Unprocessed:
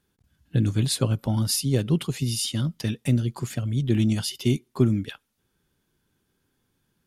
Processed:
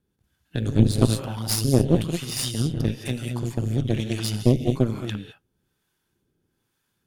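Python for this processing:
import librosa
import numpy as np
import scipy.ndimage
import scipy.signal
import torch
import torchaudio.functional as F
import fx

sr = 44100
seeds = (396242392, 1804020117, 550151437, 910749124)

y = fx.rev_gated(x, sr, seeds[0], gate_ms=240, shape='rising', drr_db=2.5)
y = fx.harmonic_tremolo(y, sr, hz=1.1, depth_pct=70, crossover_hz=630.0)
y = fx.cheby_harmonics(y, sr, harmonics=(6,), levels_db=(-10,), full_scale_db=-3.5)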